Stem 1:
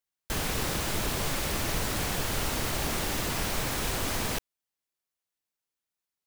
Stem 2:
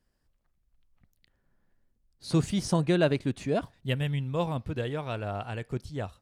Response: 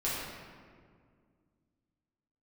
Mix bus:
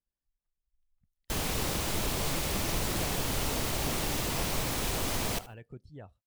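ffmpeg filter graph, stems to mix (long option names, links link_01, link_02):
-filter_complex "[0:a]equalizer=frequency=1600:width_type=o:width=0.7:gain=-4,adelay=1000,volume=-1dB,asplit=2[link_01][link_02];[link_02]volume=-16.5dB[link_03];[1:a]acompressor=threshold=-41dB:ratio=2,volume=-6.5dB[link_04];[link_03]aecho=0:1:76|152|228|304:1|0.28|0.0784|0.022[link_05];[link_01][link_04][link_05]amix=inputs=3:normalize=0,afftdn=noise_reduction=15:noise_floor=-58"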